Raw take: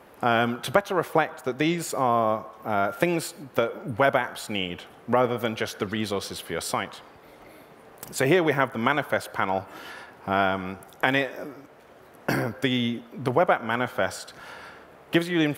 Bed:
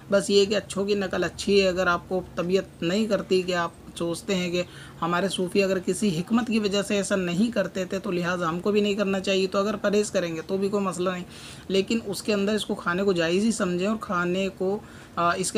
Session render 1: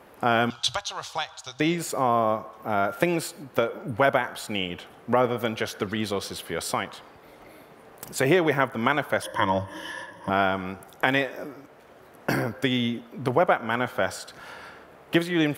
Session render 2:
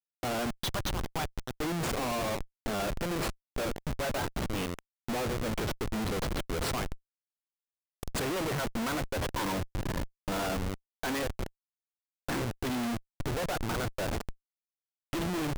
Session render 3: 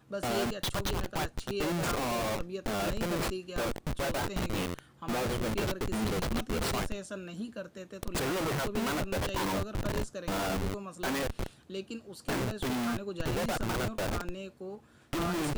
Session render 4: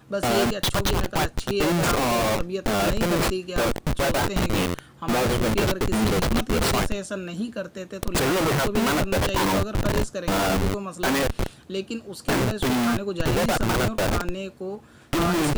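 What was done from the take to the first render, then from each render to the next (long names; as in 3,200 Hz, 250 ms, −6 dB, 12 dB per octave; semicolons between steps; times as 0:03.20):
0:00.50–0:01.60: drawn EQ curve 100 Hz 0 dB, 220 Hz −27 dB, 450 Hz −21 dB, 840 Hz −5 dB, 1,400 Hz −7 dB, 2,000 Hz −9 dB, 3,700 Hz +12 dB, 6,600 Hz +11 dB, 15,000 Hz −18 dB; 0:09.22–0:10.30: EQ curve with evenly spaced ripples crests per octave 1.2, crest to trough 17 dB
flanger 0.87 Hz, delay 1.9 ms, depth 3.7 ms, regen −69%; comparator with hysteresis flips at −34 dBFS
mix in bed −16 dB
level +9.5 dB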